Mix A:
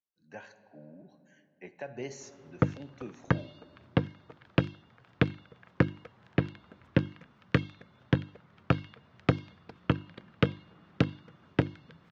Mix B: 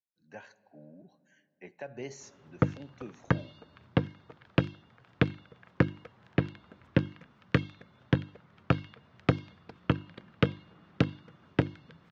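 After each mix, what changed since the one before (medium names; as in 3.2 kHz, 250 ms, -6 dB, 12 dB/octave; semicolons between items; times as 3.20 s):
speech: send -8.0 dB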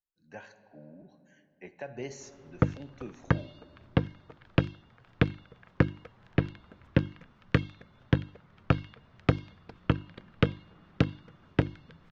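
speech: send +8.5 dB; master: remove high-pass 100 Hz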